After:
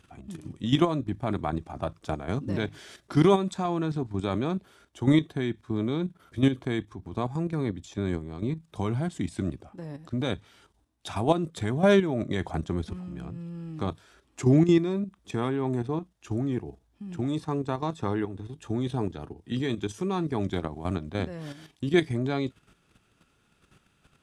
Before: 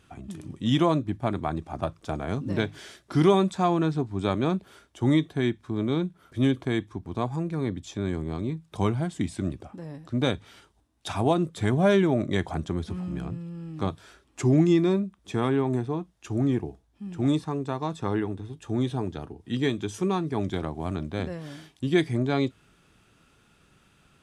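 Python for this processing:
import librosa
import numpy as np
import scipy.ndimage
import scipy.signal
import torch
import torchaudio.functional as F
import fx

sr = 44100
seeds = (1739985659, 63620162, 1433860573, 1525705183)

y = fx.level_steps(x, sr, step_db=10)
y = y * 10.0 ** (2.5 / 20.0)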